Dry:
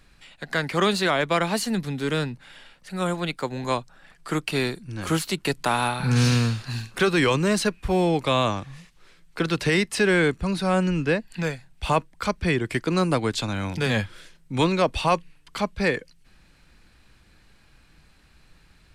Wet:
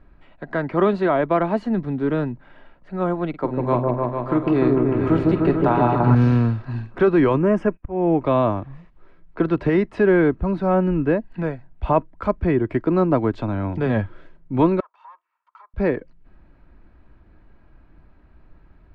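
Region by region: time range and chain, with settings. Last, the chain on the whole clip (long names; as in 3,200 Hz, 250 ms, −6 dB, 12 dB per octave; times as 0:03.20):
0:03.29–0:06.15: double-tracking delay 48 ms −12 dB + echo whose low-pass opens from repeat to repeat 149 ms, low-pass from 750 Hz, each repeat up 1 octave, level 0 dB
0:07.38–0:08.22: noise gate −42 dBFS, range −22 dB + volume swells 274 ms + Butterworth band-reject 4,100 Hz, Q 1.9
0:14.80–0:15.74: lower of the sound and its delayed copy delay 2.2 ms + downward compressor 8 to 1, threshold −36 dBFS + four-pole ladder high-pass 1,000 Hz, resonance 70%
whole clip: low-pass filter 1,000 Hz 12 dB per octave; comb filter 3.1 ms, depth 32%; level +5 dB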